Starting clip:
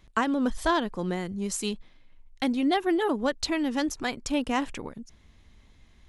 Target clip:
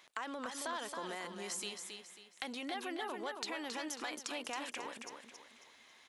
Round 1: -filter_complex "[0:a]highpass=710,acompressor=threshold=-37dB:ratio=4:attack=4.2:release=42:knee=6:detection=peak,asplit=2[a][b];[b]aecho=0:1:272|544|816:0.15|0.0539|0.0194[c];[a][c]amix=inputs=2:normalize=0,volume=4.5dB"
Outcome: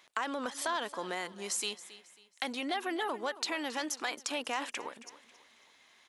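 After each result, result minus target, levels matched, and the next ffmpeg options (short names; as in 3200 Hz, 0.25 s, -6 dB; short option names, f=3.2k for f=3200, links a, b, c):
compressor: peak gain reduction -7.5 dB; echo-to-direct -10.5 dB
-filter_complex "[0:a]highpass=710,acompressor=threshold=-47dB:ratio=4:attack=4.2:release=42:knee=6:detection=peak,asplit=2[a][b];[b]aecho=0:1:272|544|816:0.15|0.0539|0.0194[c];[a][c]amix=inputs=2:normalize=0,volume=4.5dB"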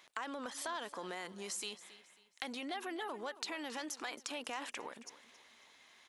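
echo-to-direct -10.5 dB
-filter_complex "[0:a]highpass=710,acompressor=threshold=-47dB:ratio=4:attack=4.2:release=42:knee=6:detection=peak,asplit=2[a][b];[b]aecho=0:1:272|544|816|1088:0.501|0.18|0.065|0.0234[c];[a][c]amix=inputs=2:normalize=0,volume=4.5dB"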